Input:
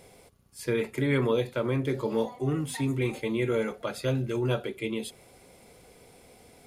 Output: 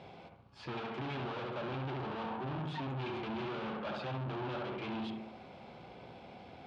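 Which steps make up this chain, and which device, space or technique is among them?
analogue delay pedal into a guitar amplifier (analogue delay 68 ms, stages 1024, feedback 48%, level -5 dB; tube stage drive 42 dB, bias 0.5; speaker cabinet 100–3600 Hz, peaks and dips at 290 Hz -3 dB, 460 Hz -9 dB, 830 Hz +4 dB, 2000 Hz -8 dB); gain +6.5 dB

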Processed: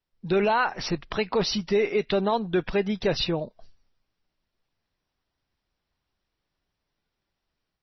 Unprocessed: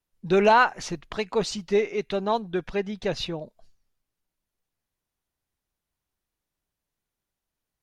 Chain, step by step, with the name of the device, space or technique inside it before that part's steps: low-bitrate web radio (AGC gain up to 6 dB; limiter -14.5 dBFS, peak gain reduction 9.5 dB; MP3 24 kbps 22050 Hz)

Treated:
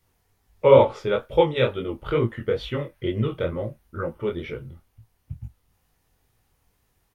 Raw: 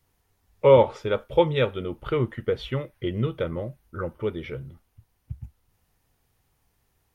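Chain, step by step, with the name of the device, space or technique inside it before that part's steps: double-tracked vocal (doubler 26 ms -13.5 dB; chorus 2.2 Hz, delay 18 ms, depth 6.6 ms); gain +4.5 dB

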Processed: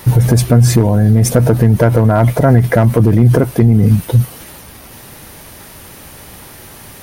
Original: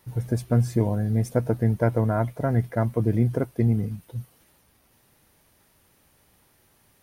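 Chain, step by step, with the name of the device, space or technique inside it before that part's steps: loud club master (compressor 2:1, threshold -25 dBFS, peak gain reduction 5.5 dB; hard clip -17.5 dBFS, distortion -24 dB; maximiser +27.5 dB); gain -1 dB

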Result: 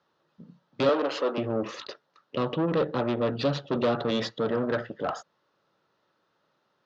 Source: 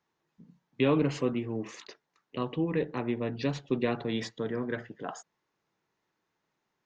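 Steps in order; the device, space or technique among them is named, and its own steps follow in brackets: guitar amplifier (tube stage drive 31 dB, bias 0.5; tone controls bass 0 dB, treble +12 dB; speaker cabinet 76–4100 Hz, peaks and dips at 560 Hz +10 dB, 1300 Hz +8 dB, 2200 Hz -7 dB); 0.89–1.38 HPF 320 Hz 24 dB/oct; gain +8 dB

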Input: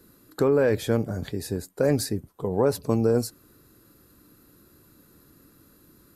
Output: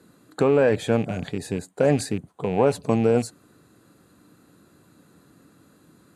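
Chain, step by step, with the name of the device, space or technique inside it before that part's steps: car door speaker with a rattle (rattling part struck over -30 dBFS, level -31 dBFS; speaker cabinet 110–9100 Hz, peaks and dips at 170 Hz +3 dB, 360 Hz -3 dB, 730 Hz +6 dB, 5300 Hz -10 dB); gain +2.5 dB

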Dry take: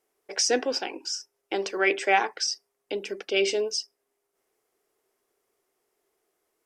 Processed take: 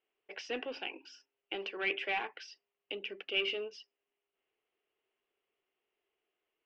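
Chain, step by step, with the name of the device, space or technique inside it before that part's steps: overdriven synthesiser ladder filter (soft clip -20 dBFS, distortion -12 dB; ladder low-pass 3100 Hz, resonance 70%); de-hum 137.3 Hz, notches 2

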